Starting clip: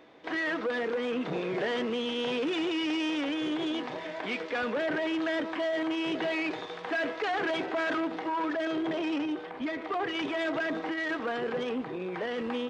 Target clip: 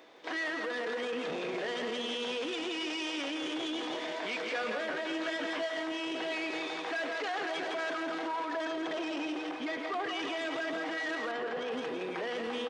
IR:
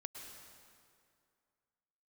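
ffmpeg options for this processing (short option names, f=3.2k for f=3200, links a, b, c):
-filter_complex "[0:a]bass=f=250:g=-12,treble=f=4k:g=8,aecho=1:1:166|332|498|664|830|996|1162:0.501|0.266|0.141|0.0746|0.0395|0.021|0.0111,alimiter=level_in=4dB:limit=-24dB:level=0:latency=1:release=14,volume=-4dB,asettb=1/sr,asplit=3[a][b][c];[a]atrim=end=4.444[d];[b]atrim=start=4.44:end=5.92,asetpts=PTS-STARTPTS,afade=t=in:d=0.004:c=qsin,afade=t=out:st=1.476:d=0.004:c=qsin,asplit=2[e][f];[f]adelay=18,volume=-5.5dB[g];[e][g]amix=inputs=2:normalize=0,atrim=end_sample=65268[h];[c]atrim=start=5.916[i];[d][h]acrossfade=d=0.004:c1=hsin:c2=qsin[j];[j][i]acrossfade=d=0.004:c1=qsin:c2=hsin,asettb=1/sr,asplit=3[k][l][m];[k]atrim=end=11.314[n];[l]atrim=start=11.31:end=11.72,asetpts=PTS-STARTPTS,afade=t=in:d=0.004:c=qsin,afade=t=out:st=0.406:d=0.004:c=qsin,highshelf=f=5.2k:g=-11[o];[m]atrim=start=11.716[p];[n][o]acrossfade=d=0.004:c1=hsin:c2=qsin[q];[q][p]acrossfade=d=0.004:c1=qsin:c2=hsin"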